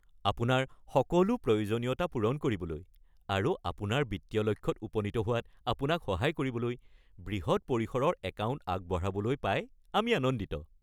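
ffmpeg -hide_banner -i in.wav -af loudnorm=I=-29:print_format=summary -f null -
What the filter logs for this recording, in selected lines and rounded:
Input Integrated:    -32.2 LUFS
Input True Peak:     -11.6 dBTP
Input LRA:             2.2 LU
Input Threshold:     -42.4 LUFS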